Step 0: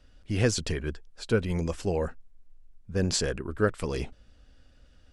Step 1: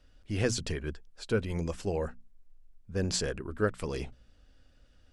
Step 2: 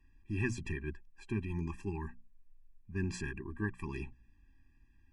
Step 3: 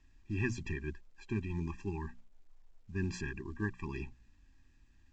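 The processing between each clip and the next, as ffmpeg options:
-af "bandreject=f=60:t=h:w=6,bandreject=f=120:t=h:w=6,bandreject=f=180:t=h:w=6,bandreject=f=240:t=h:w=6,volume=-3.5dB"
-af "highshelf=f=3k:t=q:w=3:g=-6.5,afftfilt=real='re*eq(mod(floor(b*sr/1024/390),2),0)':imag='im*eq(mod(floor(b*sr/1024/390),2),0)':win_size=1024:overlap=0.75,volume=-3.5dB"
-ar 16000 -c:a pcm_mulaw

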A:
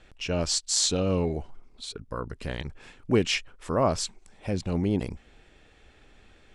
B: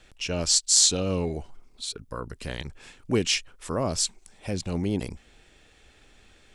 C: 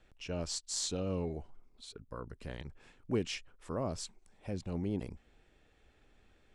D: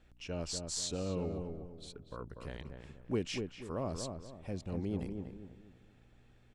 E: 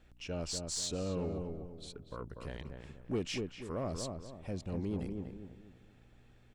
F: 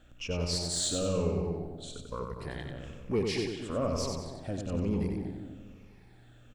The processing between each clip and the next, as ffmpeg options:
-filter_complex "[0:a]highshelf=f=4k:g=11,acrossover=split=500|3000[a][b][c];[b]acompressor=threshold=-28dB:ratio=6[d];[a][d][c]amix=inputs=3:normalize=0,volume=-1.5dB"
-af "aeval=exprs='0.891*(cos(1*acos(clip(val(0)/0.891,-1,1)))-cos(1*PI/2))+0.00631*(cos(6*acos(clip(val(0)/0.891,-1,1)))-cos(6*PI/2))':c=same,highshelf=f=2.5k:g=-11.5,volume=-8dB"
-filter_complex "[0:a]aeval=exprs='val(0)+0.000631*(sin(2*PI*60*n/s)+sin(2*PI*2*60*n/s)/2+sin(2*PI*3*60*n/s)/3+sin(2*PI*4*60*n/s)/4+sin(2*PI*5*60*n/s)/5)':c=same,asplit=2[a][b];[b]adelay=242,lowpass=f=1.4k:p=1,volume=-5dB,asplit=2[c][d];[d]adelay=242,lowpass=f=1.4k:p=1,volume=0.37,asplit=2[e][f];[f]adelay=242,lowpass=f=1.4k:p=1,volume=0.37,asplit=2[g][h];[h]adelay=242,lowpass=f=1.4k:p=1,volume=0.37,asplit=2[i][j];[j]adelay=242,lowpass=f=1.4k:p=1,volume=0.37[k];[a][c][e][g][i][k]amix=inputs=6:normalize=0,volume=-1.5dB"
-af "asoftclip=type=tanh:threshold=-28dB,volume=1.5dB"
-af "afftfilt=real='re*pow(10,9/40*sin(2*PI*(0.84*log(max(b,1)*sr/1024/100)/log(2)-(-1.1)*(pts-256)/sr)))':imag='im*pow(10,9/40*sin(2*PI*(0.84*log(max(b,1)*sr/1024/100)/log(2)-(-1.1)*(pts-256)/sr)))':win_size=1024:overlap=0.75,aecho=1:1:93|186|279|372|465:0.596|0.232|0.0906|0.0353|0.0138,volume=3.5dB"

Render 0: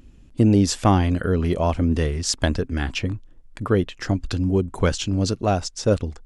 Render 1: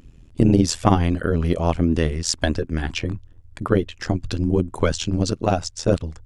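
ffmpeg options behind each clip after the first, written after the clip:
-af "tremolo=f=82:d=0.857,volume=4dB"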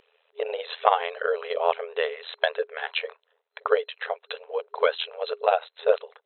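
-af "afftfilt=real='re*between(b*sr/4096,410,4100)':imag='im*between(b*sr/4096,410,4100)':win_size=4096:overlap=0.75,volume=1dB"

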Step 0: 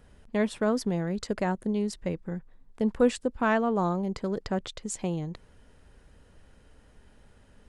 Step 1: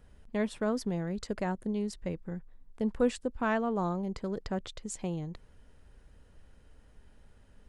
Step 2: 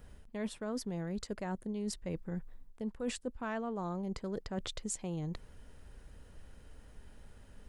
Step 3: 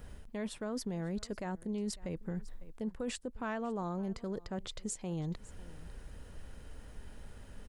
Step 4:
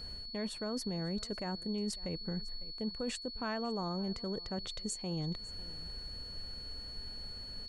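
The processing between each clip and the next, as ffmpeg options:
-af "lowshelf=f=75:g=6.5,volume=-5dB"
-af "areverse,acompressor=threshold=-38dB:ratio=8,areverse,crystalizer=i=0.5:c=0,volume=3.5dB"
-af "aecho=1:1:550:0.0668,alimiter=level_in=10dB:limit=-24dB:level=0:latency=1:release=188,volume=-10dB,volume=5dB"
-af "aeval=exprs='val(0)+0.00631*sin(2*PI*4400*n/s)':c=same"

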